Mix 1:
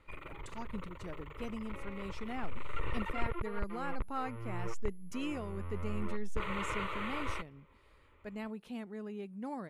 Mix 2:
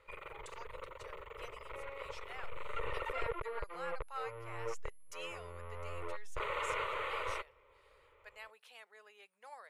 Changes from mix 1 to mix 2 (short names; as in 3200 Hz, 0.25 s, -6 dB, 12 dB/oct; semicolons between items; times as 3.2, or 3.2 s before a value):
speech: add HPF 1400 Hz 12 dB/oct; master: add resonant low shelf 370 Hz -8 dB, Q 3